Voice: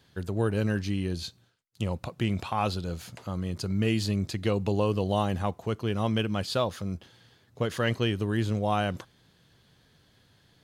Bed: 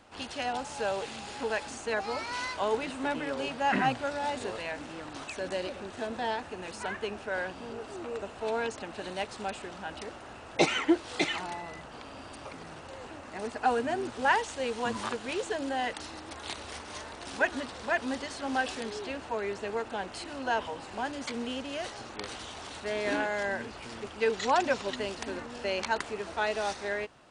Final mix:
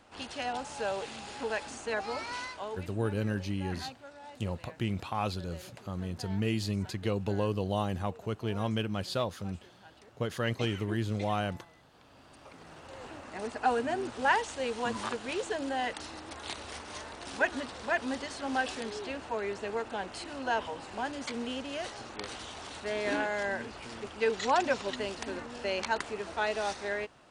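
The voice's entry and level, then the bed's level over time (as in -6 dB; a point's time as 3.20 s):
2.60 s, -4.5 dB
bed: 2.32 s -2 dB
2.98 s -16.5 dB
11.91 s -16.5 dB
13.05 s -1 dB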